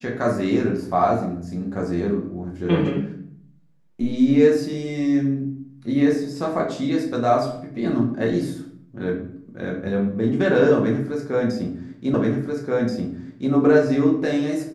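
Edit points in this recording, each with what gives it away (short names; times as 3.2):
12.14 repeat of the last 1.38 s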